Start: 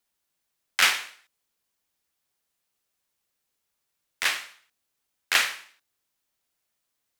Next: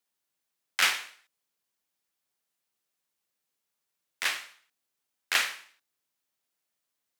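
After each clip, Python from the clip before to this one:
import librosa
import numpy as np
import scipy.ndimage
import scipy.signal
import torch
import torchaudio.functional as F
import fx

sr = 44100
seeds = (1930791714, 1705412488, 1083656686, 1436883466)

y = scipy.signal.sosfilt(scipy.signal.butter(2, 120.0, 'highpass', fs=sr, output='sos'), x)
y = y * librosa.db_to_amplitude(-4.0)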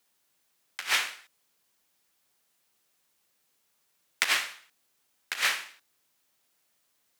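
y = fx.over_compress(x, sr, threshold_db=-32.0, ratio=-0.5)
y = y * librosa.db_to_amplitude(5.5)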